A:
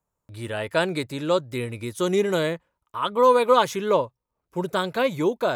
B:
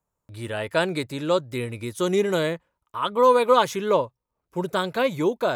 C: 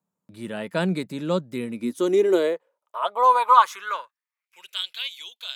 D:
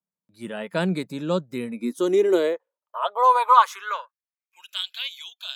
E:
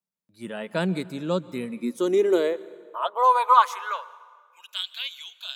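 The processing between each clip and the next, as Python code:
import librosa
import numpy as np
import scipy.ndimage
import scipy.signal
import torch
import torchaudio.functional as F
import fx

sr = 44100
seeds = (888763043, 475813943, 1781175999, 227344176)

y1 = x
y2 = fx.filter_sweep_highpass(y1, sr, from_hz=190.0, to_hz=3200.0, start_s=1.59, end_s=4.89, q=5.5)
y2 = y2 * 10.0 ** (-4.5 / 20.0)
y3 = fx.noise_reduce_blind(y2, sr, reduce_db=14)
y4 = fx.rev_plate(y3, sr, seeds[0], rt60_s=1.7, hf_ratio=0.75, predelay_ms=110, drr_db=19.0)
y4 = y4 * 10.0 ** (-1.5 / 20.0)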